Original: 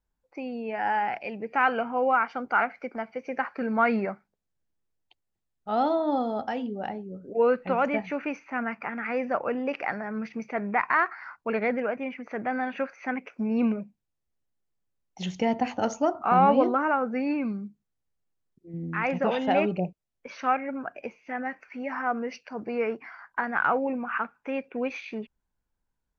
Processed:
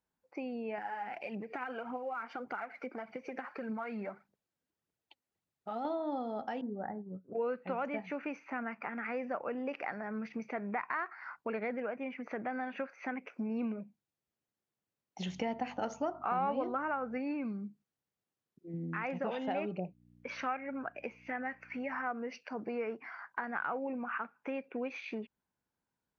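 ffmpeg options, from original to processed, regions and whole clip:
-filter_complex "[0:a]asettb=1/sr,asplit=3[s0][s1][s2];[s0]atrim=end=0.784[s3];[s1]atrim=start=0.78:end=5.85,asetpts=PTS-STARTPTS,afade=t=in:d=0.004:c=qsin,afade=t=out:st=5.066:d=0.004:c=qsin,acompressor=threshold=0.0141:ratio=2.5:attack=3.2:release=140:knee=1:detection=peak,aphaser=in_gain=1:out_gain=1:delay=4.5:decay=0.48:speed=1.7:type=triangular[s4];[s2]atrim=start=5.846[s5];[s3][s4]acrossfade=d=0.004:c1=hsin:c2=qsin[s6];[s6][s5]acrossfade=d=0.004:c1=qsin:c2=hsin,asettb=1/sr,asplit=3[s7][s8][s9];[s7]atrim=end=6.614[s10];[s8]atrim=start=6.61:end=7.33,asetpts=PTS-STARTPTS,afade=t=in:d=0.004:c=qsin,afade=t=out:st=0.716:d=0.004:c=qsin,agate=range=0.0224:threshold=0.0224:ratio=3:release=100:detection=peak,asubboost=boost=9.5:cutoff=240,asuperstop=centerf=5000:order=20:qfactor=0.57[s11];[s9]atrim=start=7.326[s12];[s10][s11]acrossfade=d=0.004:c1=hsin:c2=qsin[s13];[s13][s12]acrossfade=d=0.004:c1=qsin:c2=hsin,asettb=1/sr,asplit=3[s14][s15][s16];[s14]atrim=end=15.264[s17];[s15]atrim=start=15.26:end=17.18,asetpts=PTS-STARTPTS,afade=t=in:d=0.004:c=qsin,afade=t=out:st=1.916:d=0.004:c=qsin,equalizer=f=1800:w=0.33:g=4,aeval=exprs='val(0)+0.00631*(sin(2*PI*50*n/s)+sin(2*PI*2*50*n/s)/2+sin(2*PI*3*50*n/s)/3+sin(2*PI*4*50*n/s)/4+sin(2*PI*5*50*n/s)/5)':c=same[s18];[s16]atrim=start=17.176[s19];[s17][s18]acrossfade=d=0.004:c1=hsin:c2=qsin[s20];[s20][s19]acrossfade=d=0.004:c1=qsin:c2=hsin,asettb=1/sr,asplit=3[s21][s22][s23];[s21]atrim=end=19.854[s24];[s22]atrim=start=19.85:end=22.13,asetpts=PTS-STARTPTS,afade=t=in:d=0.004:c=qsin,afade=t=out:st=2.276:d=0.004:c=qsin,aeval=exprs='val(0)+0.00178*(sin(2*PI*60*n/s)+sin(2*PI*2*60*n/s)/2+sin(2*PI*3*60*n/s)/3+sin(2*PI*4*60*n/s)/4+sin(2*PI*5*60*n/s)/5)':c=same,equalizer=f=2100:w=1.1:g=4[s25];[s23]atrim=start=22.126[s26];[s24][s25]acrossfade=d=0.004:c1=hsin:c2=qsin[s27];[s27][s26]acrossfade=d=0.004:c1=qsin:c2=hsin,highpass=130,acompressor=threshold=0.0126:ratio=2.5,highshelf=f=4900:g=-5.5"

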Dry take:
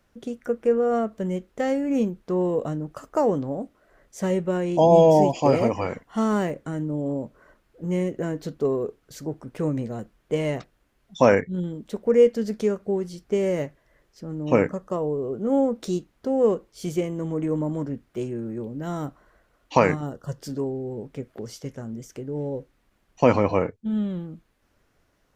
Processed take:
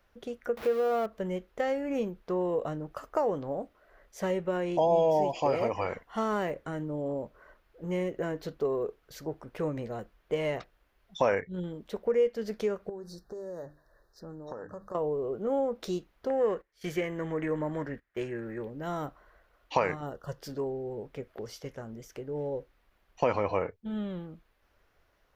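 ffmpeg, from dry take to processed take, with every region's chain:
-filter_complex "[0:a]asettb=1/sr,asplit=3[s0][s1][s2];[s0]atrim=end=0.574[s3];[s1]atrim=start=0.57:end=1.06,asetpts=PTS-STARTPTS,afade=t=in:d=0.004:c=qsin,afade=t=out:st=0.486:d=0.004:c=qsin,aeval=exprs='val(0)+0.5*0.0266*sgn(val(0))':c=same,highpass=f=110:p=1[s4];[s2]atrim=start=1.056[s5];[s3][s4]acrossfade=d=0.004:c1=hsin:c2=qsin[s6];[s6][s5]acrossfade=d=0.004:c1=qsin:c2=hsin,asettb=1/sr,asplit=3[s7][s8][s9];[s7]atrim=end=12.894[s10];[s8]atrim=start=12.89:end=14.95,asetpts=PTS-STARTPTS,afade=t=in:d=0.004:c=qsin,afade=t=out:st=2.056:d=0.004:c=qsin,bandreject=f=50:t=h:w=6,bandreject=f=100:t=h:w=6,bandreject=f=150:t=h:w=6,bandreject=f=200:t=h:w=6,bandreject=f=250:t=h:w=6,bandreject=f=300:t=h:w=6,acompressor=threshold=0.0224:ratio=10:attack=3.2:release=140:knee=1:detection=peak,asuperstop=centerf=2600:order=20:qfactor=1.4[s11];[s9]atrim=start=14.946[s12];[s10][s11]acrossfade=d=0.004:c1=hsin:c2=qsin[s13];[s13][s12]acrossfade=d=0.004:c1=qsin:c2=hsin,asettb=1/sr,asplit=3[s14][s15][s16];[s14]atrim=end=16.304[s17];[s15]atrim=start=16.3:end=18.7,asetpts=PTS-STARTPTS,afade=t=in:d=0.004:c=qsin,afade=t=out:st=2.396:d=0.004:c=qsin,agate=range=0.141:threshold=0.00891:ratio=16:release=100:detection=peak,equalizer=f=1800:t=o:w=0.61:g=14.5[s18];[s16]atrim=start=18.696[s19];[s17][s18]acrossfade=d=0.004:c1=hsin:c2=qsin[s20];[s20][s19]acrossfade=d=0.004:c1=qsin:c2=hsin,equalizer=f=125:t=o:w=1:g=-7,equalizer=f=250:t=o:w=1:g=-9,equalizer=f=8000:t=o:w=1:g=-10,acompressor=threshold=0.0447:ratio=2"

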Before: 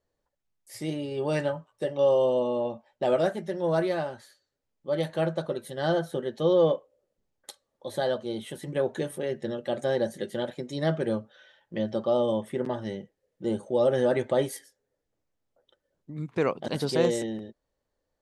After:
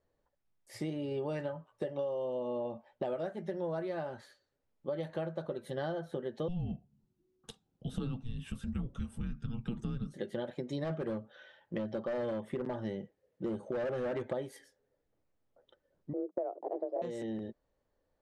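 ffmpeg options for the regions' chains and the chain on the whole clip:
-filter_complex "[0:a]asettb=1/sr,asplit=3[s0][s1][s2];[s0]atrim=end=6.484[s3];[s1]atrim=start=6.48:end=10.14,asetpts=PTS-STARTPTS,afade=t=in:d=0.004:c=qsin,afade=t=out:st=3.656:d=0.004:c=qsin,equalizer=f=2000:t=o:w=1.5:g=-6,afreqshift=-370[s4];[s2]atrim=start=10.136[s5];[s3][s4]acrossfade=d=0.004:c1=hsin:c2=qsin[s6];[s6][s5]acrossfade=d=0.004:c1=qsin:c2=hsin,asettb=1/sr,asplit=3[s7][s8][s9];[s7]atrim=end=10.844[s10];[s8]atrim=start=10.84:end=14.33,asetpts=PTS-STARTPTS,afade=t=in:d=0.004:c=qsin,afade=t=out:st=3.486:d=0.004:c=qsin,highpass=45,volume=15.8,asoftclip=hard,volume=0.0631[s11];[s9]atrim=start=14.326[s12];[s10][s11]acrossfade=d=0.004:c1=hsin:c2=qsin[s13];[s13][s12]acrossfade=d=0.004:c1=qsin:c2=hsin,asettb=1/sr,asplit=3[s14][s15][s16];[s14]atrim=end=16.134[s17];[s15]atrim=start=16.13:end=17.02,asetpts=PTS-STARTPTS,afade=t=in:d=0.004:c=qsin,afade=t=out:st=0.886:d=0.004:c=qsin,agate=range=0.0316:threshold=0.00501:ratio=16:release=100:detection=peak,lowpass=f=440:t=q:w=1.8,afreqshift=180[s18];[s16]atrim=start=17.016[s19];[s17][s18]acrossfade=d=0.004:c1=hsin:c2=qsin[s20];[s20][s19]acrossfade=d=0.004:c1=qsin:c2=hsin,lowpass=f=2200:p=1,acompressor=threshold=0.0178:ratio=12,volume=1.26"

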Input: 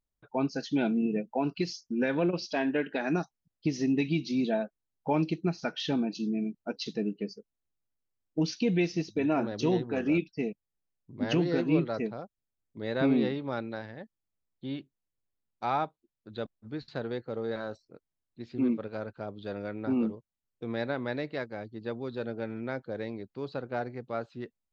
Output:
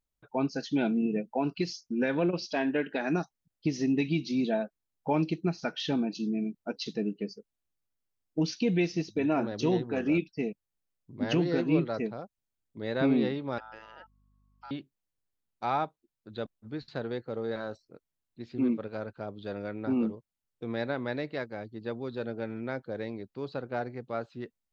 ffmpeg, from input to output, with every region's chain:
-filter_complex "[0:a]asettb=1/sr,asplit=3[s0][s1][s2];[s0]atrim=end=13.584[s3];[s1]atrim=start=13.58:end=14.71,asetpts=PTS-STARTPTS,afade=t=in:d=0.004:c=qsin,afade=t=out:st=1.126:d=0.004:c=qsin,aeval=exprs='val(0)*sin(2*PI*1100*n/s)':c=same,acompressor=threshold=0.00562:ratio=2.5:attack=3.2:release=140:knee=1:detection=peak,aeval=exprs='val(0)+0.000501*(sin(2*PI*50*n/s)+sin(2*PI*2*50*n/s)/2+sin(2*PI*3*50*n/s)/3+sin(2*PI*4*50*n/s)/4+sin(2*PI*5*50*n/s)/5)':c=same[s4];[s2]atrim=start=14.706[s5];[s3][s4]acrossfade=d=0.004:c1=hsin:c2=qsin[s6];[s6][s5]acrossfade=d=0.004:c1=qsin:c2=hsin"

